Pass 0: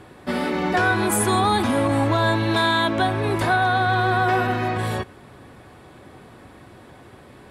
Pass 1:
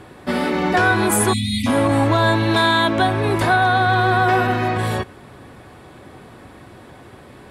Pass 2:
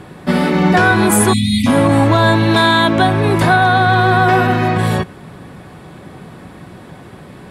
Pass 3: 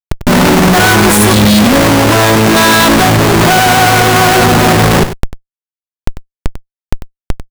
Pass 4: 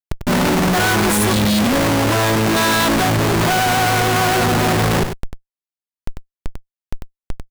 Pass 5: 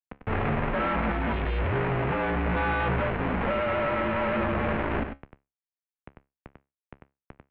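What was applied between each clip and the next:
spectral selection erased 1.33–1.67 s, 280–1900 Hz; trim +3.5 dB
peaking EQ 170 Hz +11 dB 0.48 oct; trim +4 dB
Schmitt trigger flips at -24.5 dBFS; on a send: delay 96 ms -11.5 dB; on the sum: trim +7 dB
saturation -8.5 dBFS, distortion -16 dB; trim -5 dB
mistuned SSB -150 Hz 190–2700 Hz; feedback comb 69 Hz, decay 0.23 s, harmonics all, mix 50%; trim -6 dB

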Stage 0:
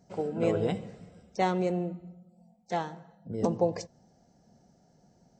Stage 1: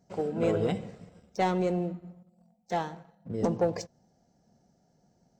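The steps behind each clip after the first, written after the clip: waveshaping leveller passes 1; trim -2.5 dB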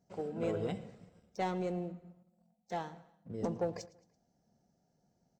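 feedback delay 111 ms, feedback 48%, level -21 dB; trim -8 dB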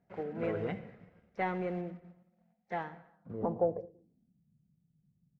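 block-companded coder 5-bit; low-pass sweep 2 kHz -> 150 Hz, 3.04–4.47 s

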